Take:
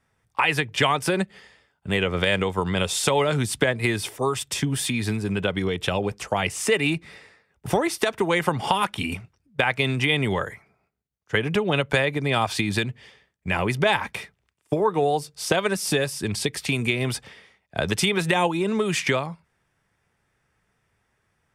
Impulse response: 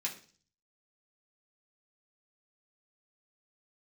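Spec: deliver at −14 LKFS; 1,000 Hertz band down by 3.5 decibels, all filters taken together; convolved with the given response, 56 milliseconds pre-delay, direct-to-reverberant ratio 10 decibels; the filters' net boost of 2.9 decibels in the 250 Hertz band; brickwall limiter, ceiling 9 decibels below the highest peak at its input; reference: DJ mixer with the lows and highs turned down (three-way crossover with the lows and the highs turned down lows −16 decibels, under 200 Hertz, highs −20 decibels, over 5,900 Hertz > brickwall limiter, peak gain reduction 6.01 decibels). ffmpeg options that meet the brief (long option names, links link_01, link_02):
-filter_complex "[0:a]equalizer=frequency=250:width_type=o:gain=8,equalizer=frequency=1000:width_type=o:gain=-5,alimiter=limit=-13.5dB:level=0:latency=1,asplit=2[link_01][link_02];[1:a]atrim=start_sample=2205,adelay=56[link_03];[link_02][link_03]afir=irnorm=-1:irlink=0,volume=-12dB[link_04];[link_01][link_04]amix=inputs=2:normalize=0,acrossover=split=200 5900:gain=0.158 1 0.1[link_05][link_06][link_07];[link_05][link_06][link_07]amix=inputs=3:normalize=0,volume=13.5dB,alimiter=limit=-3.5dB:level=0:latency=1"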